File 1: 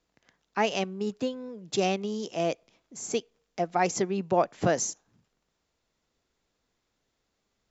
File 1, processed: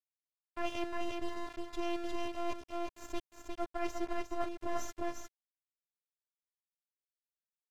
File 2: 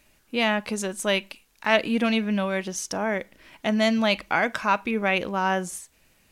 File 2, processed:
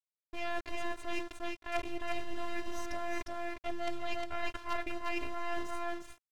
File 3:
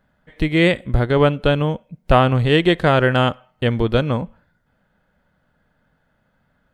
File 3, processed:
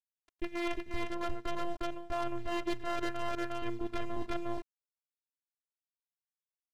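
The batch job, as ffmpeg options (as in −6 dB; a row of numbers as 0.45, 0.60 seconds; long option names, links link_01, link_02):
-af "acrusher=bits=3:dc=4:mix=0:aa=0.000001,aemphasis=mode=reproduction:type=75fm,afftfilt=real='hypot(re,im)*cos(PI*b)':imag='0':win_size=512:overlap=0.75,aecho=1:1:356:0.562,areverse,acompressor=threshold=-29dB:ratio=20,areverse"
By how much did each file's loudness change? −11.0, −14.5, −20.0 LU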